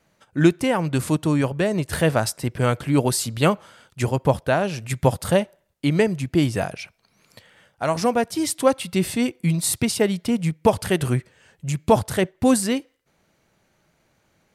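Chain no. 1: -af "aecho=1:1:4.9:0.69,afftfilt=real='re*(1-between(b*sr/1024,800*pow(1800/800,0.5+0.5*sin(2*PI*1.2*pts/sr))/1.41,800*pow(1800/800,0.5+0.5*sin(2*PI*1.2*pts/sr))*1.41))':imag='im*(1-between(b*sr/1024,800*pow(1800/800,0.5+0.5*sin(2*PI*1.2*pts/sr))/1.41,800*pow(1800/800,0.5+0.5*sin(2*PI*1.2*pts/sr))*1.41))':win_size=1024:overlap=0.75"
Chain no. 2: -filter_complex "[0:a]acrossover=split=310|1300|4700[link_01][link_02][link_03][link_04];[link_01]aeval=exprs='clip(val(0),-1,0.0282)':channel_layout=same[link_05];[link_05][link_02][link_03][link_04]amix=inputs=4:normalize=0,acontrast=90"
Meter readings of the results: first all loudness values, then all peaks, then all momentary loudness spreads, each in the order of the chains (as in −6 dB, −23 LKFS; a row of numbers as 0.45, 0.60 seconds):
−21.0, −17.0 LKFS; −2.5, −1.0 dBFS; 9, 8 LU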